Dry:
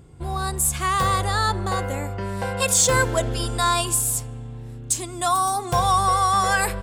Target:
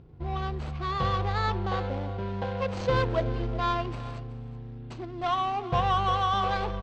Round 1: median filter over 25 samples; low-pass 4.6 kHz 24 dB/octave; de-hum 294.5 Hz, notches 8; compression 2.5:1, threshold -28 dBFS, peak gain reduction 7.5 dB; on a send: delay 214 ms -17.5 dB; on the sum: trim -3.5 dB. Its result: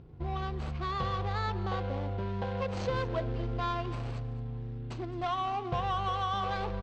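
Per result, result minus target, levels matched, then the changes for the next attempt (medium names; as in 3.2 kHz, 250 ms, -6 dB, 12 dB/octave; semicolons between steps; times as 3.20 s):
echo 160 ms early; compression: peak gain reduction +7.5 dB
change: delay 374 ms -17.5 dB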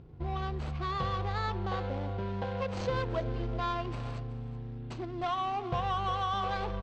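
compression: peak gain reduction +7.5 dB
remove: compression 2.5:1, threshold -28 dBFS, peak gain reduction 7.5 dB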